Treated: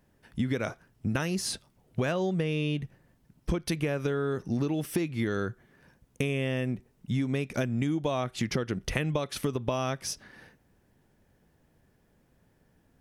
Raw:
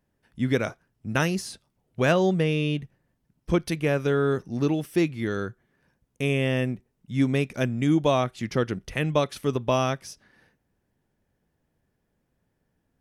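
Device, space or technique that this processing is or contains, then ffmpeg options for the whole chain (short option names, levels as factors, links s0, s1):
serial compression, peaks first: -af "acompressor=threshold=0.0355:ratio=6,acompressor=threshold=0.0178:ratio=2.5,volume=2.51"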